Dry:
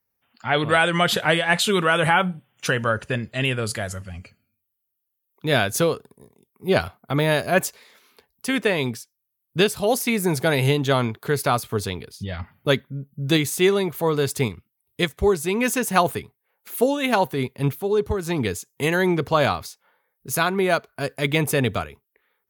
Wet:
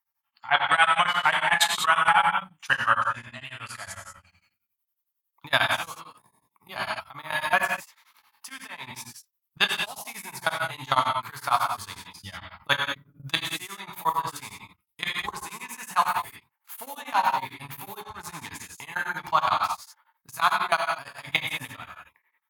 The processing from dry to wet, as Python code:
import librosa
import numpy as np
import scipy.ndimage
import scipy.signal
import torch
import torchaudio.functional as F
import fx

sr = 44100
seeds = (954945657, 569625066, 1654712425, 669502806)

y = fx.low_shelf_res(x, sr, hz=660.0, db=-13.0, q=3.0)
y = fx.notch(y, sr, hz=1500.0, q=25.0)
y = fx.level_steps(y, sr, step_db=21)
y = fx.rev_gated(y, sr, seeds[0], gate_ms=230, shape='flat', drr_db=0.0)
y = y * np.abs(np.cos(np.pi * 11.0 * np.arange(len(y)) / sr))
y = y * 10.0 ** (3.0 / 20.0)